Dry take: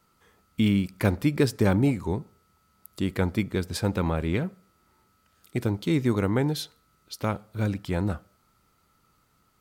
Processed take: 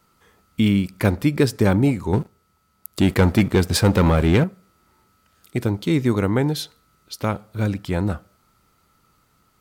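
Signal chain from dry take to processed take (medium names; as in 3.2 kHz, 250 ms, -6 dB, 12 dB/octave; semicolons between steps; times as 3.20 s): 2.13–4.44 s: waveshaping leveller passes 2; trim +4.5 dB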